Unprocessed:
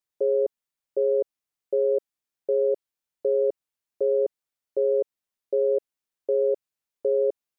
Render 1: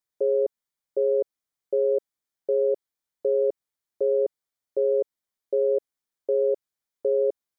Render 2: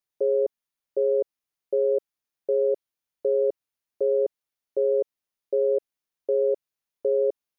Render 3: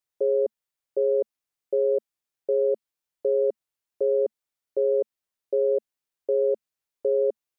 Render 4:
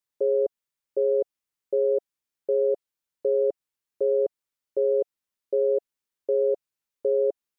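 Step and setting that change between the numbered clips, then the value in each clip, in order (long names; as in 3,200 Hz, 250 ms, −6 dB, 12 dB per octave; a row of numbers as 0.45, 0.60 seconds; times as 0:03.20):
notch filter, centre frequency: 2,700, 7,800, 220, 710 Hertz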